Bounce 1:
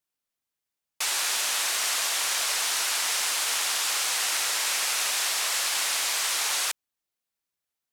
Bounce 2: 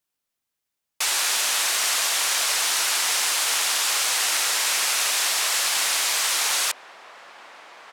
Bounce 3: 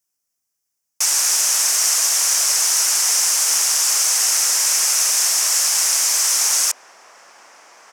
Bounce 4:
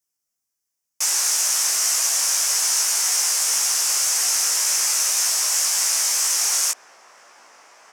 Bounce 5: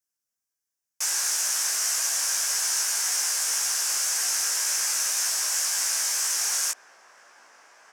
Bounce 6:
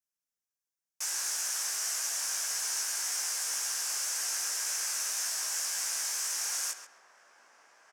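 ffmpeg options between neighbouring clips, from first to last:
-filter_complex "[0:a]asplit=2[a][b];[b]adelay=1633,volume=-10dB,highshelf=f=4k:g=-36.7[c];[a][c]amix=inputs=2:normalize=0,volume=4dB"
-af "highshelf=f=4.7k:t=q:w=3:g=6.5,volume=-1.5dB"
-af "flanger=delay=16:depth=3.8:speed=1.9"
-af "equalizer=f=1.6k:w=6.3:g=7.5,volume=-5.5dB"
-filter_complex "[0:a]asplit=2[a][b];[b]adelay=134,lowpass=f=2.6k:p=1,volume=-7dB,asplit=2[c][d];[d]adelay=134,lowpass=f=2.6k:p=1,volume=0.31,asplit=2[e][f];[f]adelay=134,lowpass=f=2.6k:p=1,volume=0.31,asplit=2[g][h];[h]adelay=134,lowpass=f=2.6k:p=1,volume=0.31[i];[a][c][e][g][i]amix=inputs=5:normalize=0,volume=-7.5dB"

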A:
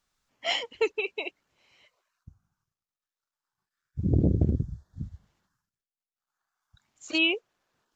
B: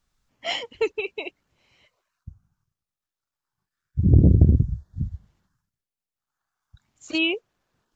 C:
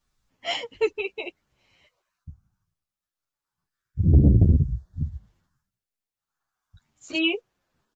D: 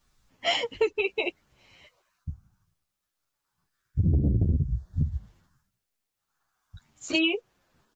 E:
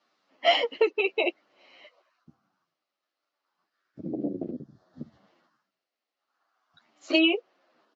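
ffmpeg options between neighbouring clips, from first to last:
-af "lowshelf=f=220:g=11.5"
-filter_complex "[0:a]asplit=2[a][b];[b]adelay=9.5,afreqshift=-2.2[c];[a][c]amix=inputs=2:normalize=1,volume=2dB"
-af "acompressor=threshold=-28dB:ratio=5,volume=6.5dB"
-af "highpass=f=300:w=0.5412,highpass=f=300:w=1.3066,equalizer=f=420:t=q:w=4:g=-6,equalizer=f=630:t=q:w=4:g=3,equalizer=f=920:t=q:w=4:g=-5,equalizer=f=1.6k:t=q:w=4:g=-6,equalizer=f=2.4k:t=q:w=4:g=-5,equalizer=f=3.5k:t=q:w=4:g=-7,lowpass=f=4.2k:w=0.5412,lowpass=f=4.2k:w=1.3066,volume=6.5dB"

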